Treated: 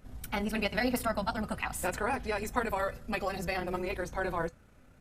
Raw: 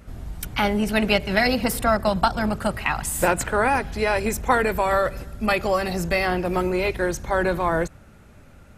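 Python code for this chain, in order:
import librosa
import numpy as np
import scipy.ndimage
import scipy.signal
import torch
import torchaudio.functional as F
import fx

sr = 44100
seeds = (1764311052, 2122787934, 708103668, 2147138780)

y = fx.comb_fb(x, sr, f0_hz=250.0, decay_s=0.21, harmonics='all', damping=0.0, mix_pct=60)
y = fx.stretch_grains(y, sr, factor=0.57, grain_ms=63.0)
y = F.gain(torch.from_numpy(y), -3.0).numpy()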